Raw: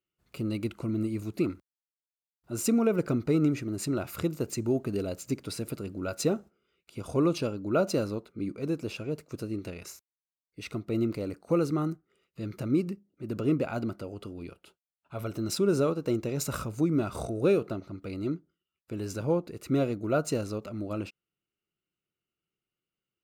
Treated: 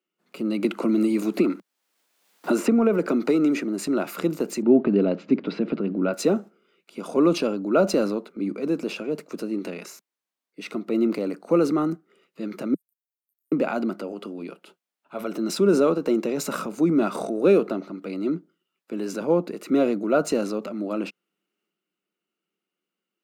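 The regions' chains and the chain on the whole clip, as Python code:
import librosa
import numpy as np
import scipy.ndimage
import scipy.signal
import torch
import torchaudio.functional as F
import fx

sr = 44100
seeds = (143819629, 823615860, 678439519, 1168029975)

y = fx.chain(x, sr, fx.highpass(hz=190.0, slope=12),
    fx.band_squash(depth_pct=100), at=(0.64, 3.64))
y = fx.chain(y, sr, fx.lowpass(hz=3500.0, slope=24),
    fx.low_shelf(hz=290.0, db=10.5), at=(4.62, 6.14))
y = fx.chain(y, sr, fx.cheby2_highpass(hz=2600.0, order=4, stop_db=80),
    fx.level_steps(step_db=20), at=(12.74, 13.52))
y = scipy.signal.sosfilt(scipy.signal.butter(8, 180.0, 'highpass', fs=sr, output='sos'), y)
y = fx.transient(y, sr, attack_db=-1, sustain_db=4)
y = fx.high_shelf(y, sr, hz=4000.0, db=-7.5)
y = y * 10.0 ** (7.0 / 20.0)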